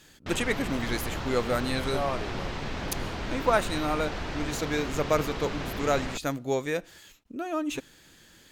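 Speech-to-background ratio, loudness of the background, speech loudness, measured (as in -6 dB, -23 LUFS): 4.5 dB, -35.0 LUFS, -30.5 LUFS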